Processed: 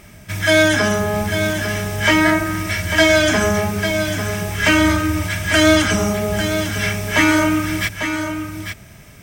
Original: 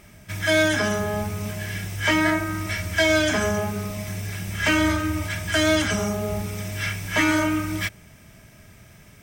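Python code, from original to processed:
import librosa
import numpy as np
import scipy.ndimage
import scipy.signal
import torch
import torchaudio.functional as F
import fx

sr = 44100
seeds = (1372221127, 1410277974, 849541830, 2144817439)

y = x + 10.0 ** (-8.0 / 20.0) * np.pad(x, (int(847 * sr / 1000.0), 0))[:len(x)]
y = y * librosa.db_to_amplitude(6.0)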